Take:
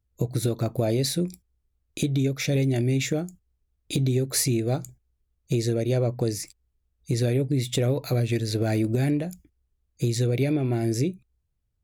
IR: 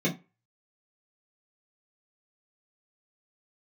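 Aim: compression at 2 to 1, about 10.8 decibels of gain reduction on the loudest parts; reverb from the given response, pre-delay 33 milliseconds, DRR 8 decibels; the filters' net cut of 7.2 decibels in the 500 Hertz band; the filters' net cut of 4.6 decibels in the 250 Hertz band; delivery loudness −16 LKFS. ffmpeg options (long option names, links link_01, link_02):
-filter_complex "[0:a]equalizer=frequency=250:width_type=o:gain=-3.5,equalizer=frequency=500:width_type=o:gain=-8.5,acompressor=threshold=-43dB:ratio=2,asplit=2[link_01][link_02];[1:a]atrim=start_sample=2205,adelay=33[link_03];[link_02][link_03]afir=irnorm=-1:irlink=0,volume=-18dB[link_04];[link_01][link_04]amix=inputs=2:normalize=0,volume=20dB"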